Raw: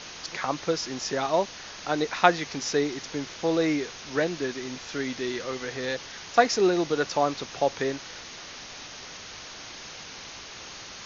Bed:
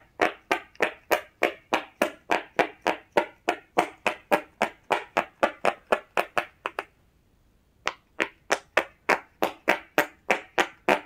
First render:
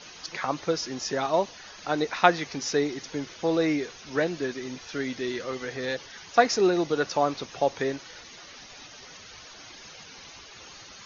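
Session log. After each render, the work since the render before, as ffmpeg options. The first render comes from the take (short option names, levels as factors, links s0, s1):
-af "afftdn=nr=10:nf=-42"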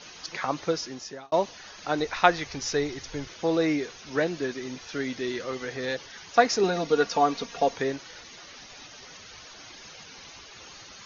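-filter_complex "[0:a]asplit=3[s0][s1][s2];[s0]afade=t=out:st=1.98:d=0.02[s3];[s1]asubboost=boost=10:cutoff=75,afade=t=in:st=1.98:d=0.02,afade=t=out:st=3.27:d=0.02[s4];[s2]afade=t=in:st=3.27:d=0.02[s5];[s3][s4][s5]amix=inputs=3:normalize=0,asettb=1/sr,asplit=3[s6][s7][s8];[s6]atrim=end=6.634[s9];[s7]atrim=start=6.63:end=7.76,asetpts=PTS-STARTPTS,afade=t=in:d=0.004:c=qsin,afade=t=out:st=1.126:d=0.004:c=qsin,aecho=1:1:4.3:0.72,atrim=end_sample=49833[s10];[s8]atrim=start=7.756[s11];[s9][s10]acrossfade=d=0.004:c1=hsin:c2=qsin[s12];[s12][s11]acrossfade=d=0.004:c1=qsin:c2=hsin,asplit=2[s13][s14];[s13]atrim=end=1.32,asetpts=PTS-STARTPTS,afade=t=out:st=0.69:d=0.63[s15];[s14]atrim=start=1.32,asetpts=PTS-STARTPTS,afade=t=in:d=0.004:c=hsin[s16];[s15][s16]concat=n=2:v=0:a=1"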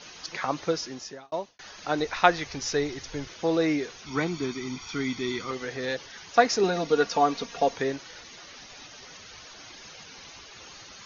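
-filter_complex "[0:a]asettb=1/sr,asplit=3[s0][s1][s2];[s0]atrim=end=4.064[s3];[s1]atrim=start=4.06:end=5.51,asetpts=PTS-STARTPTS,afade=t=in:d=0.004:c=qsin,afade=t=out:st=1.446:d=0.004:c=qsin,aecho=1:1:0.9:0.79,atrim=end_sample=63945[s4];[s2]atrim=start=5.506[s5];[s3][s4]acrossfade=d=0.004:c1=hsin:c2=qsin[s6];[s6][s5]acrossfade=d=0.004:c1=qsin:c2=hsin,asplit=2[s7][s8];[s7]atrim=end=1.59,asetpts=PTS-STARTPTS,afade=t=out:st=1.05:d=0.54[s9];[s8]atrim=start=1.59,asetpts=PTS-STARTPTS,afade=t=in:d=0.004:c=hsin[s10];[s9][s10]concat=n=2:v=0:a=1"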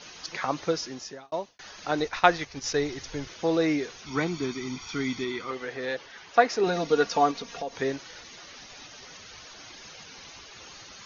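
-filter_complex "[0:a]asettb=1/sr,asplit=3[s0][s1][s2];[s0]atrim=end=1.914[s3];[s1]atrim=start=1.91:end=2.76,asetpts=PTS-STARTPTS,afade=t=in:d=0.004:c=qsin,afade=t=out:st=0.846:d=0.004:c=qsin,agate=range=0.447:threshold=0.0178:ratio=16:release=100:detection=peak[s4];[s2]atrim=start=2.756[s5];[s3][s4]acrossfade=d=0.004:c1=hsin:c2=qsin[s6];[s6][s5]acrossfade=d=0.004:c1=qsin:c2=hsin,asettb=1/sr,asplit=3[s7][s8][s9];[s7]atrim=end=5.244[s10];[s8]atrim=start=5.24:end=6.67,asetpts=PTS-STARTPTS,afade=t=in:d=0.004:c=qsin,afade=t=out:st=1.426:d=0.004:c=qsin,bass=f=250:g=-7,treble=f=4000:g=-9[s11];[s9]atrim=start=6.666[s12];[s10][s11]acrossfade=d=0.004:c1=hsin:c2=qsin[s13];[s13][s12]acrossfade=d=0.004:c1=qsin:c2=hsin,asettb=1/sr,asplit=3[s14][s15][s16];[s14]atrim=end=7.314[s17];[s15]atrim=start=7.31:end=7.82,asetpts=PTS-STARTPTS,afade=t=in:d=0.004:c=qsin,afade=t=out:st=0.506:d=0.004:c=qsin,acompressor=threshold=0.02:ratio=2.5:attack=3.2:release=140:knee=1:detection=peak[s18];[s16]atrim=start=7.816[s19];[s17][s18]acrossfade=d=0.004:c1=hsin:c2=qsin[s20];[s20][s19]acrossfade=d=0.004:c1=qsin:c2=hsin"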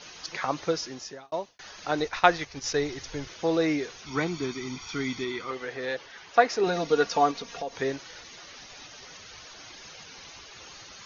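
-af "equalizer=f=230:t=o:w=0.7:g=-2.5"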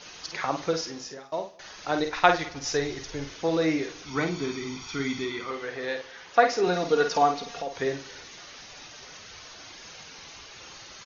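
-filter_complex "[0:a]asplit=2[s0][s1];[s1]adelay=50,volume=0.447[s2];[s0][s2]amix=inputs=2:normalize=0,aecho=1:1:103|206|309|412:0.0944|0.05|0.0265|0.0141"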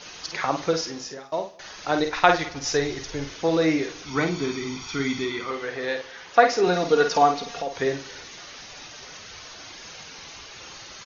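-af "volume=1.5,alimiter=limit=0.794:level=0:latency=1"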